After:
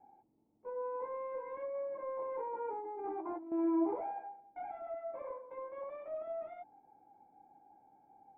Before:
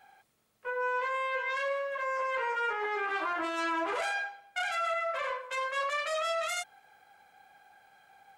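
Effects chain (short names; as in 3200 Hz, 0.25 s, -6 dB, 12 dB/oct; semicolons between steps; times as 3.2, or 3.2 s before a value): vocal tract filter u; 1–3.52 negative-ratio compressor -52 dBFS, ratio -1; gain +12 dB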